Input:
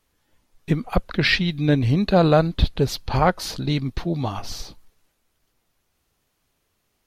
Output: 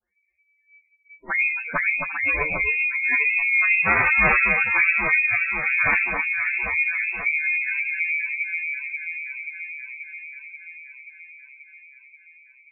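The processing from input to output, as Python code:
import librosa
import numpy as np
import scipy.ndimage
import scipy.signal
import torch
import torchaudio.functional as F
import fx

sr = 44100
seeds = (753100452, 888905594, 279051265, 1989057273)

y = fx.low_shelf(x, sr, hz=150.0, db=4.5)
y = fx.fixed_phaser(y, sr, hz=320.0, stages=6)
y = fx.doubler(y, sr, ms=25.0, db=-11.5)
y = fx.rev_spring(y, sr, rt60_s=1.9, pass_ms=(59,), chirp_ms=40, drr_db=16.5)
y = y * np.sin(2.0 * np.pi * 300.0 * np.arange(len(y)) / sr)
y = (np.mod(10.0 ** (12.0 / 20.0) * y + 1.0, 2.0) - 1.0) / 10.0 ** (12.0 / 20.0)
y = fx.dispersion(y, sr, late='lows', ms=85.0, hz=470.0)
y = fx.freq_invert(y, sr, carrier_hz=2600)
y = fx.echo_alternate(y, sr, ms=148, hz=1300.0, feedback_pct=83, wet_db=-3.0)
y = fx.spec_gate(y, sr, threshold_db=-15, keep='strong')
y = fx.stretch_vocoder(y, sr, factor=1.8)
y = y * librosa.db_to_amplitude(2.0)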